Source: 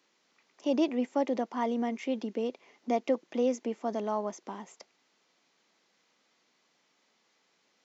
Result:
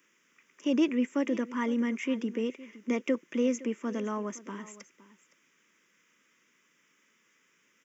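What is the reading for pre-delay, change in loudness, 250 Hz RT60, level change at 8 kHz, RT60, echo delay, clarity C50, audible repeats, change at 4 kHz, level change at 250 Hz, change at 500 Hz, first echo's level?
no reverb, +0.5 dB, no reverb, no reading, no reverb, 514 ms, no reverb, 1, +1.5 dB, +3.0 dB, -2.5 dB, -18.0 dB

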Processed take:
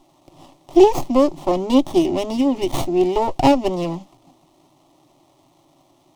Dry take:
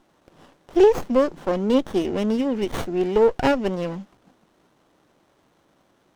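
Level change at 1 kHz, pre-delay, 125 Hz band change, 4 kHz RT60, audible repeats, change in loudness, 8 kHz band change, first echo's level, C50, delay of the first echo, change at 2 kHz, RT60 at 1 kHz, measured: +6.5 dB, no reverb, +3.0 dB, no reverb, no echo, +3.5 dB, no reading, no echo, no reverb, no echo, -2.0 dB, no reverb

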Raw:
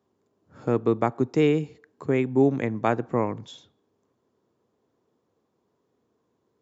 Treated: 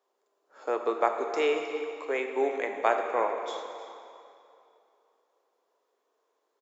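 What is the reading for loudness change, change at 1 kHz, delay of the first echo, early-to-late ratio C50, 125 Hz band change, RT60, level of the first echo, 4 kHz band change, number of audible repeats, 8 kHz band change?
-5.0 dB, +1.5 dB, 314 ms, 4.5 dB, under -35 dB, 2.7 s, -15.0 dB, +1.5 dB, 1, no reading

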